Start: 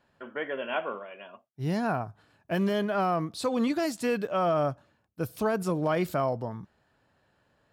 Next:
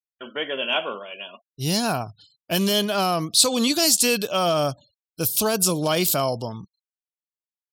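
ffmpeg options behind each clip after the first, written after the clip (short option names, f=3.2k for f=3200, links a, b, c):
-af "agate=range=-33dB:threshold=-57dB:ratio=3:detection=peak,aexciter=amount=4.2:drive=9.2:freq=2.8k,afftfilt=real='re*gte(hypot(re,im),0.00316)':imag='im*gte(hypot(re,im),0.00316)':win_size=1024:overlap=0.75,volume=4dB"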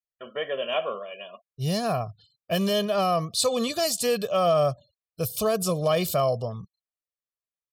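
-af "highshelf=f=2.1k:g=-10.5,aecho=1:1:1.7:0.72,volume=-2dB"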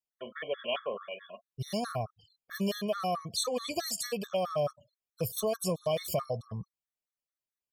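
-af "acompressor=threshold=-28dB:ratio=2.5,afftfilt=real='re*gt(sin(2*PI*4.6*pts/sr)*(1-2*mod(floor(b*sr/1024/1100),2)),0)':imag='im*gt(sin(2*PI*4.6*pts/sr)*(1-2*mod(floor(b*sr/1024/1100),2)),0)':win_size=1024:overlap=0.75"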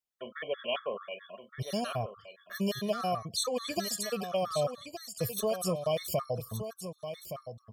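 -af "aecho=1:1:1169:0.335"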